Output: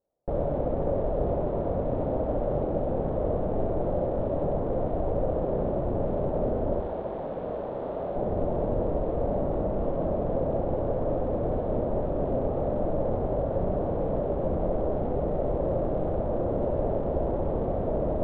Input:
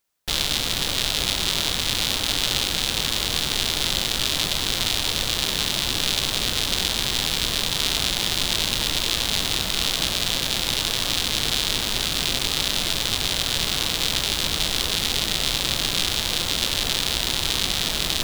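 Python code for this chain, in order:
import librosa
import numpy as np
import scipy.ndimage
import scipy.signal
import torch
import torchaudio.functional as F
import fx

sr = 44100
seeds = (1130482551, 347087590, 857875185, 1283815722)

p1 = fx.tilt_eq(x, sr, slope=3.5, at=(6.8, 8.16))
p2 = fx.fold_sine(p1, sr, drive_db=11, ceiling_db=3.0)
p3 = p1 + F.gain(torch.from_numpy(p2), -9.0).numpy()
p4 = fx.ladder_lowpass(p3, sr, hz=660.0, resonance_pct=60)
p5 = fx.room_flutter(p4, sr, wall_m=10.9, rt60_s=0.59)
y = F.gain(torch.from_numpy(p5), 2.5).numpy()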